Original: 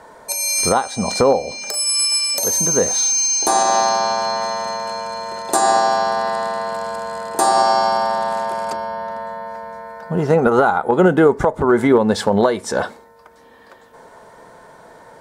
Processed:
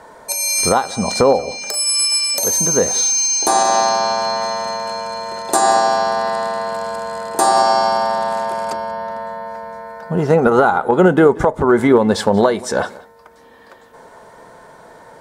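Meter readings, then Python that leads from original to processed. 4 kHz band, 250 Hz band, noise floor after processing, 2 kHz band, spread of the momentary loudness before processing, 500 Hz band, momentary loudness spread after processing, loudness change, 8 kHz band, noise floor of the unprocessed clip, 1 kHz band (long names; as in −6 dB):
+1.5 dB, +1.5 dB, −44 dBFS, +1.5 dB, 12 LU, +1.5 dB, 12 LU, +1.5 dB, +1.0 dB, −46 dBFS, +1.0 dB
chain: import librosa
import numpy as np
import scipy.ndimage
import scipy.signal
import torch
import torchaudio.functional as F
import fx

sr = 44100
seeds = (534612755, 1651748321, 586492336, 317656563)

y = x + 10.0 ** (-21.5 / 20.0) * np.pad(x, (int(184 * sr / 1000.0), 0))[:len(x)]
y = y * librosa.db_to_amplitude(1.5)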